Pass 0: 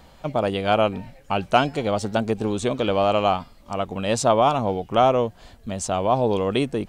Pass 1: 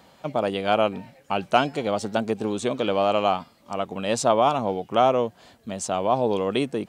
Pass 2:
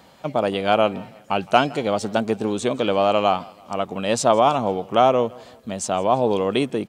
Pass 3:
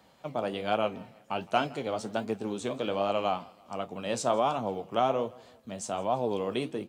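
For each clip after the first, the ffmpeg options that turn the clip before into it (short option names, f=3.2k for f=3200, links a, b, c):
-af "highpass=150,volume=-1.5dB"
-af "aecho=1:1:164|328|492:0.0668|0.0301|0.0135,volume=3dB"
-filter_complex "[0:a]acrossover=split=150[a][b];[a]acrusher=samples=13:mix=1:aa=0.000001:lfo=1:lforange=13:lforate=1.9[c];[c][b]amix=inputs=2:normalize=0,flanger=delay=8.9:depth=8.8:regen=-61:speed=1.3:shape=triangular,volume=-6dB"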